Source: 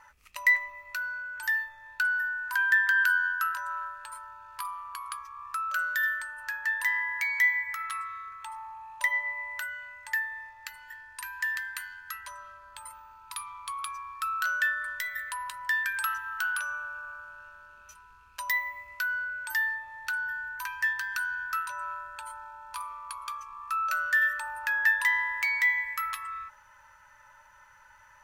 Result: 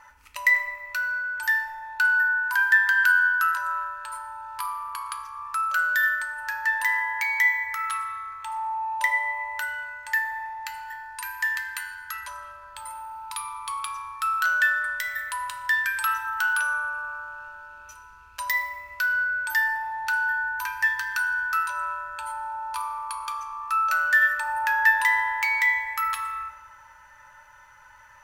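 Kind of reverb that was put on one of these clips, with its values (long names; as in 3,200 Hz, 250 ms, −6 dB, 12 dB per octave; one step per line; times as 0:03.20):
feedback delay network reverb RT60 1.7 s, low-frequency decay 0.95×, high-frequency decay 0.45×, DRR 5.5 dB
level +3.5 dB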